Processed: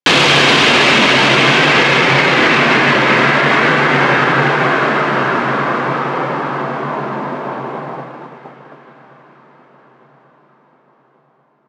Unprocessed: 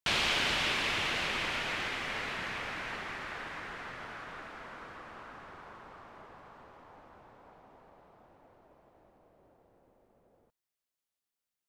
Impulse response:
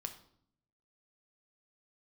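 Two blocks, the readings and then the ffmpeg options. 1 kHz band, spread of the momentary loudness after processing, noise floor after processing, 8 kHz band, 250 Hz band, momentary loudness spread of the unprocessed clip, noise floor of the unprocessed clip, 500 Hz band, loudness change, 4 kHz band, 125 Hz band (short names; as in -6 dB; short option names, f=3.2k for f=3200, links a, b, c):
+26.5 dB, 14 LU, -55 dBFS, +18.5 dB, +30.0 dB, 22 LU, under -85 dBFS, +29.0 dB, +22.0 dB, +20.5 dB, +28.5 dB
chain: -filter_complex "[0:a]agate=range=-31dB:threshold=-58dB:ratio=16:detection=peak,lowshelf=f=300:g=8,afreqshift=130,aeval=exprs='(tanh(31.6*val(0)+0.55)-tanh(0.55))/31.6':c=same,flanger=delay=2.2:depth=1:regen=-70:speed=0.48:shape=triangular,highpass=110,lowpass=7.9k,highshelf=f=5.1k:g=-8.5,aecho=1:1:1136|2272|3408|4544:0.0841|0.0446|0.0236|0.0125,asplit=2[a][b];[1:a]atrim=start_sample=2205,asetrate=38808,aresample=44100[c];[b][c]afir=irnorm=-1:irlink=0,volume=3dB[d];[a][d]amix=inputs=2:normalize=0,alimiter=level_in=33.5dB:limit=-1dB:release=50:level=0:latency=1,volume=-1dB"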